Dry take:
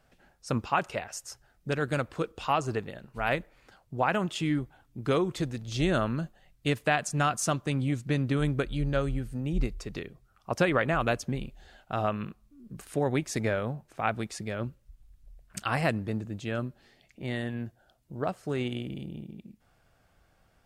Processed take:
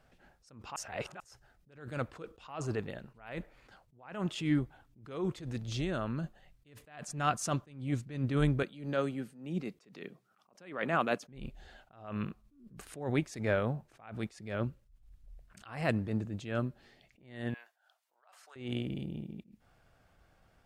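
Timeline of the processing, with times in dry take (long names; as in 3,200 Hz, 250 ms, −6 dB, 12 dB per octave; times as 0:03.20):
0:00.76–0:01.20: reverse
0:05.68–0:06.24: downward compressor 2.5 to 1, threshold −33 dBFS
0:08.63–0:11.27: Chebyshev high-pass filter 180 Hz, order 3
0:17.54–0:18.56: high-pass filter 830 Hz 24 dB per octave
whole clip: high-shelf EQ 5,800 Hz −5.5 dB; level that may rise only so fast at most 110 dB per second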